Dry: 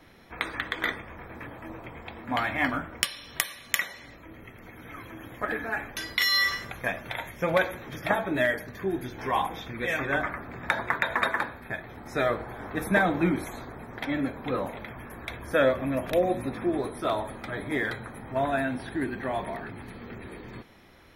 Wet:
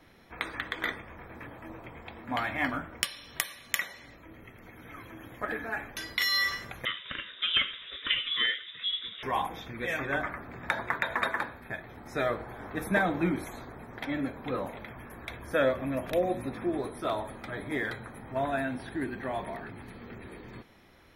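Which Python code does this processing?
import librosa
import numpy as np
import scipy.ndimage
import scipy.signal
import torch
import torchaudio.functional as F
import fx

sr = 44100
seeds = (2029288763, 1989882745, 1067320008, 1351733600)

y = fx.freq_invert(x, sr, carrier_hz=3700, at=(6.85, 9.23))
y = y * 10.0 ** (-3.5 / 20.0)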